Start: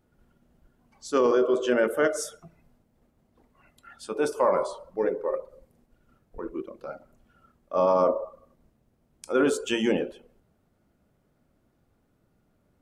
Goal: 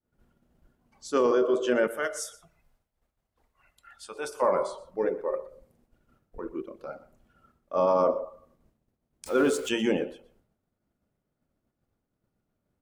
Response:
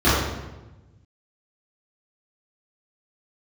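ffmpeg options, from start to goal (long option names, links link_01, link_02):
-filter_complex "[0:a]asettb=1/sr,asplit=3[link_01][link_02][link_03];[link_01]atrim=end=9.264[link_04];[link_02]atrim=start=9.26:end=9.69,asetpts=PTS-STARTPTS,afade=type=in:duration=0.004:curve=qsin,afade=type=out:start_time=0.426:duration=0.004:curve=qsin,aeval=exprs='val(0)+0.5*0.015*sgn(val(0))':channel_layout=same[link_05];[link_03]atrim=start=9.686[link_06];[link_04][link_05]acrossfade=duration=0.004:curve1=hsin:curve2=qsin[link_07];[link_07][link_06]acrossfade=duration=0.004:curve1=qsin:curve2=hsin,agate=range=-33dB:threshold=-60dB:ratio=3:detection=peak,asettb=1/sr,asplit=3[link_08][link_09][link_10];[link_08]atrim=end=1.874[link_11];[link_09]atrim=start=1.87:end=4.42,asetpts=PTS-STARTPTS,afade=type=in:duration=0.004:curve=qsin,afade=type=out:start_time=2.546:duration=0.004:curve=qsin,equalizer=frequency=240:width=0.57:gain=-14.5[link_12];[link_10]atrim=start=4.416[link_13];[link_11][link_12]acrossfade=duration=0.004:curve1=hsin:curve2=qsin[link_14];[link_14][link_13]acrossfade=duration=0.004:curve1=qsin:curve2=hsin,aecho=1:1:122:0.119,volume=-1.5dB"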